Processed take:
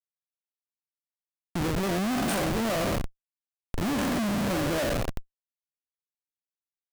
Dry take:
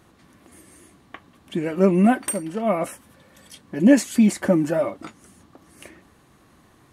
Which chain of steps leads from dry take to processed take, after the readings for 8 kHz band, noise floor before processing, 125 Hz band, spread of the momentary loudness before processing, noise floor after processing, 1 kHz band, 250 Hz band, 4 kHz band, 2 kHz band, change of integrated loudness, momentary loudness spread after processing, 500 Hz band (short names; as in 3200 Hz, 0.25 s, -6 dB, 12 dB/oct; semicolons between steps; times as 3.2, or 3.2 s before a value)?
-5.5 dB, -56 dBFS, -4.5 dB, 15 LU, under -85 dBFS, -3.0 dB, -9.5 dB, +4.5 dB, -1.5 dB, -7.5 dB, 10 LU, -7.5 dB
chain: spectral trails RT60 1.31 s; Schmitt trigger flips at -21.5 dBFS; gain -6.5 dB